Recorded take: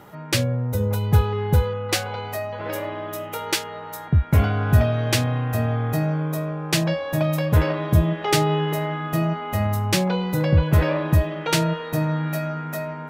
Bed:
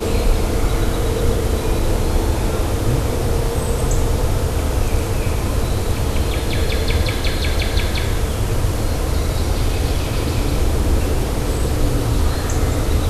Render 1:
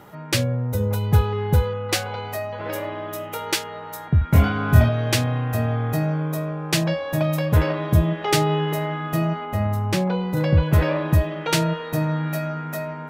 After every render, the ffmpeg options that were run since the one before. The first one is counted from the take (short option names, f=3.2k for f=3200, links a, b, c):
-filter_complex "[0:a]asettb=1/sr,asplit=3[a][b][c];[a]atrim=end=4.194[d];[b]atrim=start=4.19:end=4.89,asetpts=PTS-STARTPTS,afade=t=in:d=0.004:c=qsin,afade=t=out:st=0.696:d=0.004:c=qsin,asplit=2[e][f];[f]adelay=25,volume=-2.5dB[g];[e][g]amix=inputs=2:normalize=0,atrim=end_sample=30870[h];[c]atrim=start=4.886[i];[d][h]acrossfade=d=0.004:c1=hsin:c2=qsin[j];[j][i]acrossfade=d=0.004:c1=qsin:c2=hsin,asettb=1/sr,asplit=3[k][l][m];[k]atrim=end=9.454[n];[l]atrim=start=9.45:end=10.37,asetpts=PTS-STARTPTS,afade=t=in:d=0.004:c=qsin,afade=t=out:st=0.916:d=0.004:c=qsin,highshelf=f=2.2k:g=-8[o];[m]atrim=start=10.366[p];[n][o]acrossfade=d=0.004:c1=hsin:c2=qsin[q];[q][p]acrossfade=d=0.004:c1=qsin:c2=hsin"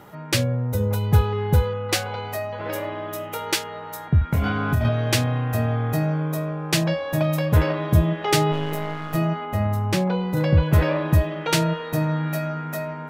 -filter_complex "[0:a]asettb=1/sr,asplit=3[a][b][c];[a]atrim=end=4.284[d];[b]atrim=start=4.28:end=4.85,asetpts=PTS-STARTPTS,afade=t=in:d=0.004:c=qsin,afade=t=out:st=0.566:d=0.004:c=qsin,acompressor=threshold=-16dB:ratio=10:attack=3.2:release=140:knee=1:detection=peak[e];[c]atrim=start=4.846[f];[d][e]acrossfade=d=0.004:c1=hsin:c2=qsin[g];[g][f]acrossfade=d=0.004:c1=qsin:c2=hsin,asplit=3[h][i][j];[h]afade=t=out:st=8.51:d=0.02[k];[i]aeval=exprs='if(lt(val(0),0),0.251*val(0),val(0))':c=same,afade=t=in:st=8.51:d=0.02,afade=t=out:st=9.14:d=0.02[l];[j]afade=t=in:st=9.14:d=0.02[m];[k][l][m]amix=inputs=3:normalize=0"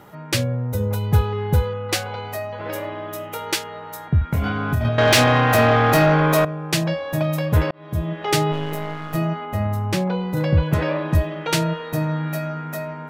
-filter_complex "[0:a]asettb=1/sr,asplit=3[a][b][c];[a]atrim=end=4.984[d];[b]atrim=start=4.98:end=6.45,asetpts=PTS-STARTPTS,afade=t=in:d=0.004:c=qsin,afade=t=out:st=1.466:d=0.004:c=qsin,asplit=2[e][f];[f]highpass=f=720:p=1,volume=26dB,asoftclip=type=tanh:threshold=-5.5dB[g];[e][g]amix=inputs=2:normalize=0,lowpass=f=5k:p=1,volume=-6dB[h];[c]atrim=start=6.446[i];[d][h]acrossfade=d=0.004:c1=hsin:c2=qsin[j];[j][i]acrossfade=d=0.004:c1=qsin:c2=hsin,asettb=1/sr,asplit=3[k][l][m];[k]atrim=end=10.744[n];[l]atrim=start=10.74:end=11.15,asetpts=PTS-STARTPTS,afade=t=in:d=0.004:c=qsin,afade=t=out:st=0.406:d=0.004:c=qsin,highpass=120,lowpass=7.4k[o];[m]atrim=start=11.146[p];[n][o]acrossfade=d=0.004:c1=hsin:c2=qsin[q];[q][p]acrossfade=d=0.004:c1=qsin:c2=hsin,asplit=2[r][s];[r]atrim=end=7.71,asetpts=PTS-STARTPTS,afade=t=out:st=7.706:d=0.004:c=hsin[t];[s]atrim=start=7.71,asetpts=PTS-STARTPTS,afade=t=in:d=0.59[u];[t][u]concat=n=2:v=0:a=1"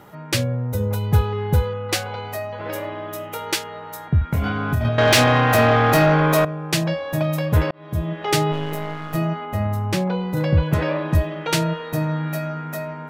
-af anull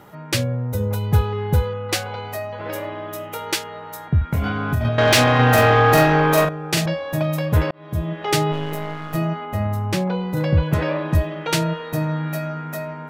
-filter_complex "[0:a]asettb=1/sr,asplit=3[a][b][c];[a]atrim=end=5.354[d];[b]atrim=start=5.35:end=6.86,asetpts=PTS-STARTPTS,afade=t=in:d=0.004:c=qsin,afade=t=out:st=1.506:d=0.004:c=qsin,asplit=2[e][f];[f]adelay=41,volume=-3.5dB[g];[e][g]amix=inputs=2:normalize=0,atrim=end_sample=66591[h];[c]atrim=start=6.856[i];[d][h]acrossfade=d=0.004:c1=hsin:c2=qsin[j];[j][i]acrossfade=d=0.004:c1=qsin:c2=hsin"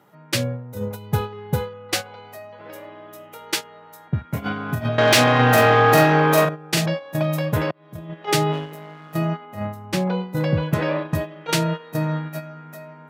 -af "highpass=f=120:w=0.5412,highpass=f=120:w=1.3066,agate=range=-10dB:threshold=-24dB:ratio=16:detection=peak"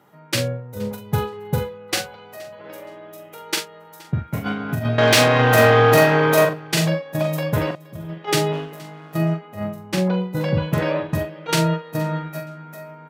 -filter_complex "[0:a]asplit=2[a][b];[b]adelay=43,volume=-6.5dB[c];[a][c]amix=inputs=2:normalize=0,aecho=1:1:471|942:0.0708|0.0149"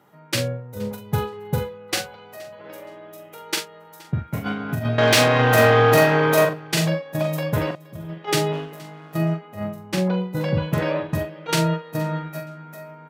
-af "volume=-1.5dB"